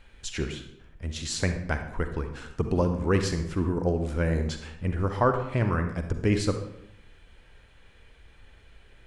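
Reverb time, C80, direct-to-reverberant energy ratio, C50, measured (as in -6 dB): 0.80 s, 10.5 dB, 7.0 dB, 7.5 dB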